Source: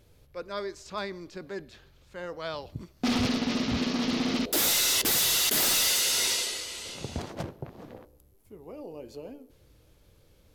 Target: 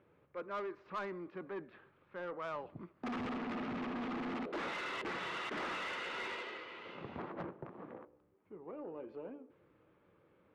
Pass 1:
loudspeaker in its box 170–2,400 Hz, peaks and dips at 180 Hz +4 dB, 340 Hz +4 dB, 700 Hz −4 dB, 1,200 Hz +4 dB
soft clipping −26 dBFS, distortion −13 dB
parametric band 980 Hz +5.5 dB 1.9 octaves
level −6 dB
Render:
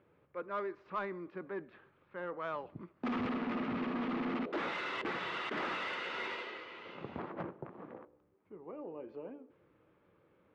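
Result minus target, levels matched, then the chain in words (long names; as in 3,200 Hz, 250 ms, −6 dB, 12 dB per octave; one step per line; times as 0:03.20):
soft clipping: distortion −6 dB
loudspeaker in its box 170–2,400 Hz, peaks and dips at 180 Hz +4 dB, 340 Hz +4 dB, 700 Hz −4 dB, 1,200 Hz +4 dB
soft clipping −32.5 dBFS, distortion −7 dB
parametric band 980 Hz +5.5 dB 1.9 octaves
level −6 dB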